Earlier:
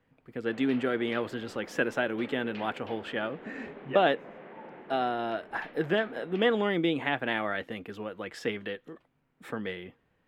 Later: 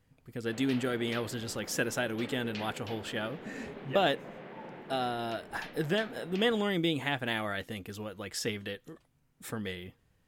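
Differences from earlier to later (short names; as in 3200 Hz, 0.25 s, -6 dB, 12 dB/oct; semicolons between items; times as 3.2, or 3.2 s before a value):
speech -4.0 dB; master: remove three-band isolator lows -12 dB, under 190 Hz, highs -19 dB, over 3100 Hz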